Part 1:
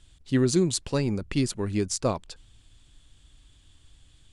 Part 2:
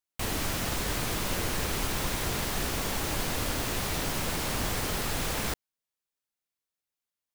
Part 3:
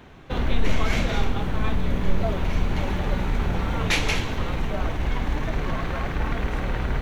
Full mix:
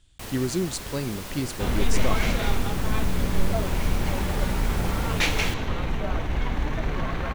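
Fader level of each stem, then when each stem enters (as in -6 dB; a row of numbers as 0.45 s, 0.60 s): -4.0 dB, -6.0 dB, -1.0 dB; 0.00 s, 0.00 s, 1.30 s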